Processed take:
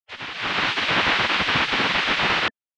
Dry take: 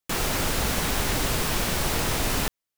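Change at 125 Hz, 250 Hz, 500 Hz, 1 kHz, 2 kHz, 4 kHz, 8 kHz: -6.0 dB, -0.5 dB, 0.0 dB, +6.5 dB, +10.0 dB, +7.0 dB, -13.5 dB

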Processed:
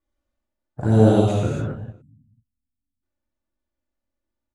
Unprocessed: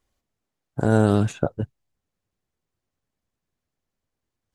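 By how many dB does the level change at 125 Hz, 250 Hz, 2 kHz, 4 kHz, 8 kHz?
+4.0 dB, +3.0 dB, -3.5 dB, +3.5 dB, -0.5 dB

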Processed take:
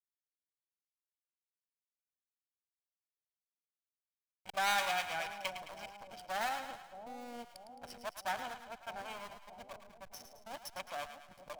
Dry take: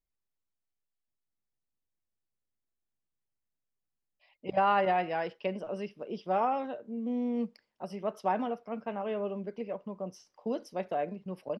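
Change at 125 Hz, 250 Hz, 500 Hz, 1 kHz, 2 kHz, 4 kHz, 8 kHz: -16.5 dB, -20.0 dB, -13.5 dB, -7.5 dB, +2.0 dB, +7.0 dB, no reading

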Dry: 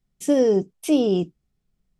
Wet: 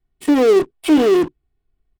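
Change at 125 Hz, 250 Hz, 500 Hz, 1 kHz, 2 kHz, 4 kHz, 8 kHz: -7.0 dB, +6.0 dB, +6.0 dB, +12.5 dB, +13.5 dB, +6.5 dB, +1.0 dB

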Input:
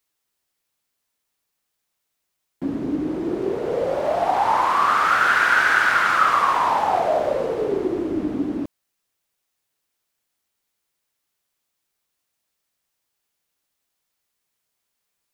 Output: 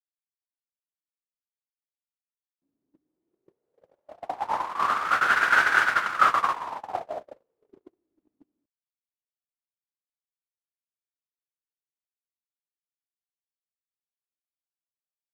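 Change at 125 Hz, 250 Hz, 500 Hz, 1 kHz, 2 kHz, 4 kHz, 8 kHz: under -15 dB, -22.5 dB, -16.5 dB, -7.0 dB, -4.5 dB, -5.5 dB, -6.0 dB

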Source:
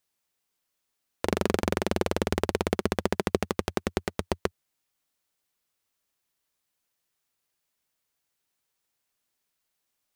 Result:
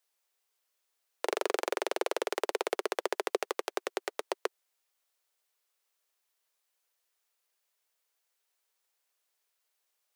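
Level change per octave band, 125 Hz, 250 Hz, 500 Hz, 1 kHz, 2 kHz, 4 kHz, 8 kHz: under -40 dB, -13.5 dB, -3.5 dB, -2.5 dB, -2.5 dB, -2.5 dB, -2.5 dB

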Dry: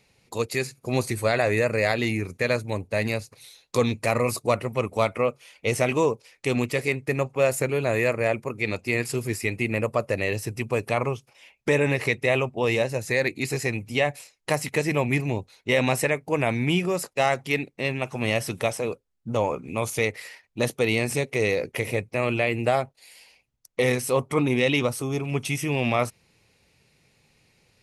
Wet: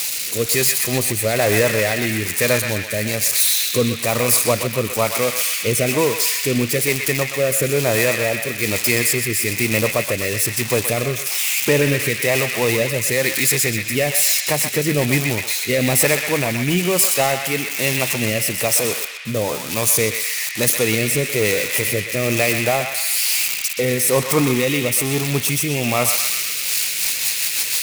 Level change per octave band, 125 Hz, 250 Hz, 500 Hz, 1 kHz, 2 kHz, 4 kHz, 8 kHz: +4.5 dB, +5.0 dB, +4.0 dB, +3.0 dB, +7.0 dB, +12.5 dB, +18.5 dB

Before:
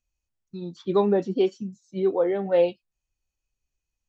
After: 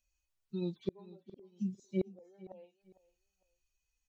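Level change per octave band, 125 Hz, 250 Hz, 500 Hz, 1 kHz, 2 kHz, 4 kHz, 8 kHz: -7.5 dB, -11.5 dB, -21.0 dB, -30.0 dB, -20.5 dB, under -15 dB, no reading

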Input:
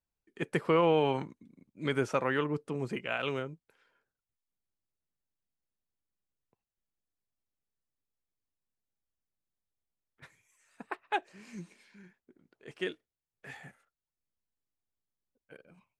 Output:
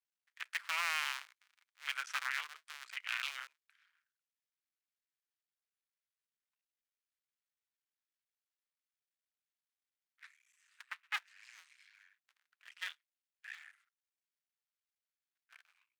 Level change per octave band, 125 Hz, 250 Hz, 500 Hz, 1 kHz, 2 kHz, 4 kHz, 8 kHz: under -40 dB, under -40 dB, under -30 dB, -10.0 dB, -0.5 dB, +1.0 dB, +6.0 dB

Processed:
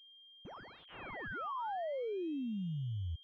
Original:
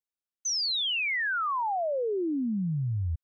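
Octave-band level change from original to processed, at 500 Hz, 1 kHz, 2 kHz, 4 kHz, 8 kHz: -9.0 dB, -10.0 dB, -17.0 dB, -24.5 dB, no reading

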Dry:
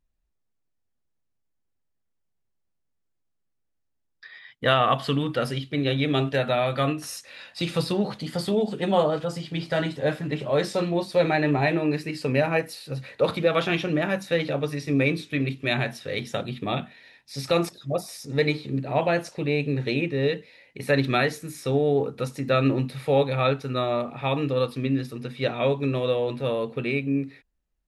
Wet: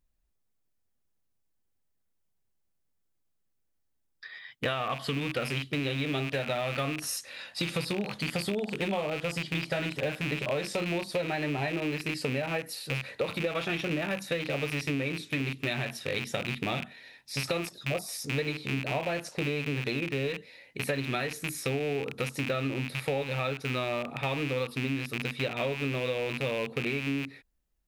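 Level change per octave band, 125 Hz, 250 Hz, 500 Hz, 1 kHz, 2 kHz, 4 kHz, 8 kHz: -6.5 dB, -7.0 dB, -8.0 dB, -8.5 dB, -2.5 dB, -3.0 dB, +1.5 dB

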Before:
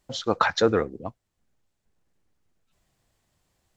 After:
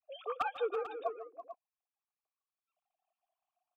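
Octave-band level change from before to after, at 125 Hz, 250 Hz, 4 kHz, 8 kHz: under -35 dB, -28.0 dB, -20.0 dB, no reading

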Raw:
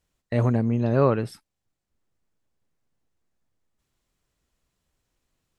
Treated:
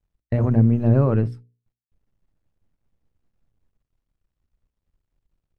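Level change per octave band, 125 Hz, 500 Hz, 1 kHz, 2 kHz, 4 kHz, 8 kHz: +6.5 dB, -1.5 dB, -4.0 dB, -4.0 dB, under -10 dB, no reading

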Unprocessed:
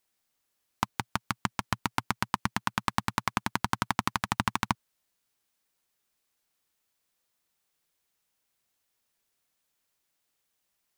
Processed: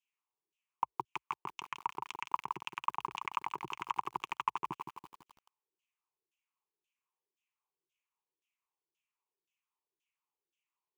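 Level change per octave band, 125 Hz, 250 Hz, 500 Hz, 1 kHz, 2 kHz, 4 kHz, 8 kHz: -21.0 dB, -18.5 dB, -9.0 dB, -4.5 dB, -12.0 dB, -11.5 dB, -18.0 dB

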